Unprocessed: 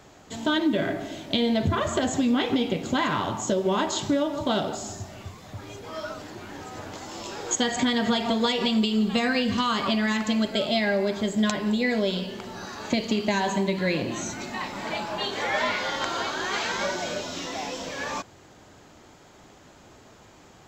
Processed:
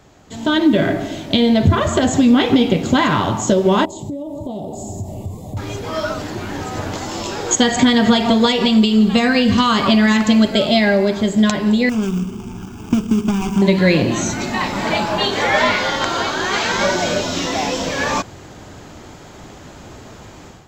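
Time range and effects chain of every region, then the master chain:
3.85–5.57 band shelf 3700 Hz -13.5 dB + compressor 4:1, threshold -38 dBFS + Butterworth band-stop 1500 Hz, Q 0.76
11.89–13.62 median filter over 41 samples + high shelf 4200 Hz +9.5 dB + fixed phaser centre 2800 Hz, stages 8
whole clip: low shelf 210 Hz +6.5 dB; AGC gain up to 11.5 dB

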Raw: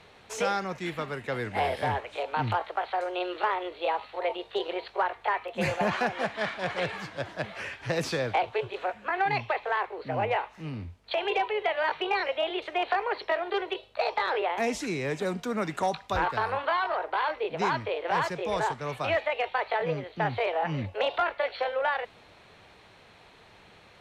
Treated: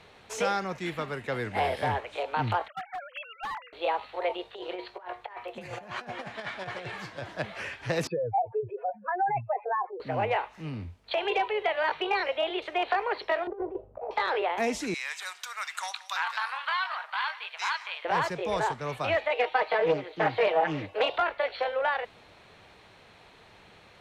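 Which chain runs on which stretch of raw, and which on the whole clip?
2.68–3.73 sine-wave speech + HPF 970 Hz 24 dB/oct + overloaded stage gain 31 dB
4.49–7.24 resonator 120 Hz, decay 0.24 s + negative-ratio compressor -37 dBFS, ratio -0.5
8.07–10 spectral contrast raised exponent 3.2 + LPF 2400 Hz 24 dB/oct
13.47–14.11 Bessel low-pass 670 Hz, order 4 + low shelf 270 Hz +7.5 dB + negative-ratio compressor -33 dBFS, ratio -0.5
14.94–18.05 HPF 960 Hz 24 dB/oct + tilt shelf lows -5.5 dB, about 1300 Hz + echo 0.178 s -18.5 dB
19.3–21.1 resonant low shelf 250 Hz -7.5 dB, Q 1.5 + comb 6.4 ms, depth 80% + Doppler distortion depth 0.22 ms
whole clip: dry

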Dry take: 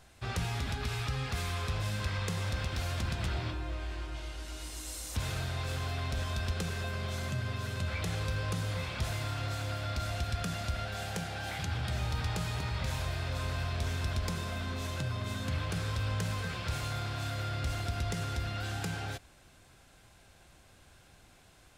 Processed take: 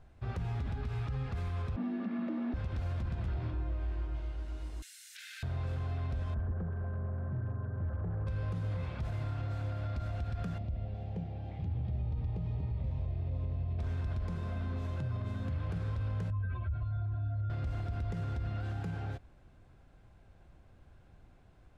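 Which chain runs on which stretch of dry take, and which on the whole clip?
1.76–2.54 air absorption 310 m + frequency shift +140 Hz
4.82–5.43 steep high-pass 1500 Hz 72 dB/oct + tilt +3 dB/oct + fast leveller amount 100%
6.34–8.27 Chebyshev band-stop 1700–6700 Hz, order 4 + air absorption 460 m + hard clip -33 dBFS
10.58–13.79 LPF 2700 Hz + bell 1400 Hz -13.5 dB 1.5 oct + notch 1500 Hz, Q 5.1
16.3–17.5 spectral contrast raised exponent 1.9 + LPF 4000 Hz 24 dB/oct + comb 3.1 ms, depth 82%
whole clip: tilt -2 dB/oct; limiter -23.5 dBFS; high shelf 3000 Hz -12 dB; gain -4.5 dB

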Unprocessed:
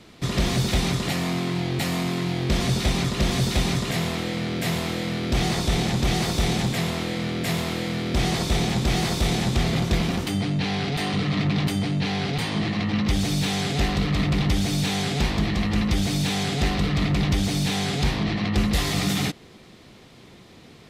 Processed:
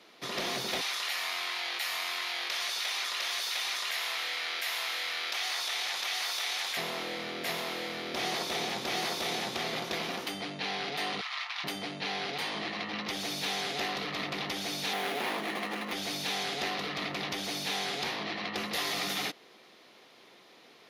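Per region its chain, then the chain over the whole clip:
0.81–6.77 HPF 1200 Hz + fast leveller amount 70%
11.21–11.64 steep high-pass 880 Hz + doubler 28 ms -8.5 dB + Doppler distortion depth 0.24 ms
14.93–15.93 median filter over 9 samples + HPF 190 Hz 24 dB/oct + fast leveller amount 70%
whole clip: HPF 470 Hz 12 dB/oct; bell 7900 Hz -12.5 dB 0.28 oct; gain -4 dB

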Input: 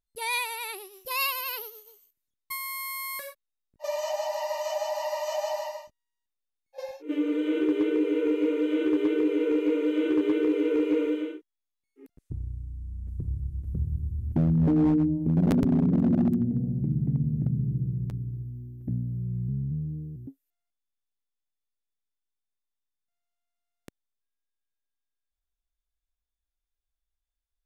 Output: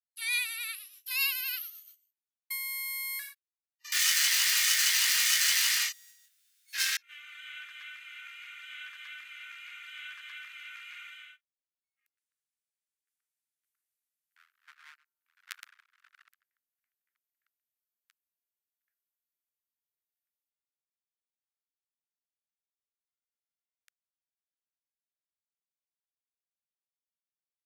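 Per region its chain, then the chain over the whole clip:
3.92–6.97 overdrive pedal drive 37 dB, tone 7700 Hz, clips at -20 dBFS + high shelf 4300 Hz +9.5 dB + doubler 23 ms -2 dB
whole clip: steep high-pass 1400 Hz 48 dB/oct; gate -54 dBFS, range -12 dB

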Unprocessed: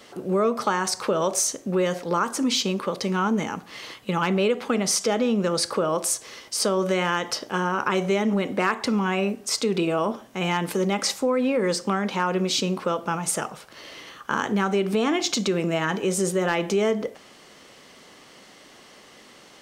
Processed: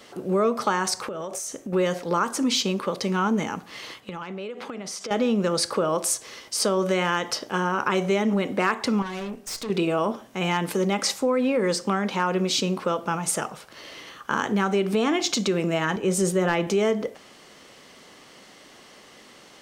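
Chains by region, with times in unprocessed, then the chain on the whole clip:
1.01–1.73 bell 4400 Hz -6 dB 0.72 oct + notch 1000 Hz, Q 14 + compressor 12:1, threshold -28 dBFS
4–5.11 HPF 180 Hz 6 dB/oct + high shelf 7300 Hz -9 dB + compressor 12:1, threshold -30 dBFS
9.02–9.7 notches 60/120/180/240/300/360/420/480/540 Hz + tube stage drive 29 dB, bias 0.7
15.96–16.67 low shelf 130 Hz +9 dB + three-band expander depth 40%
whole clip: dry

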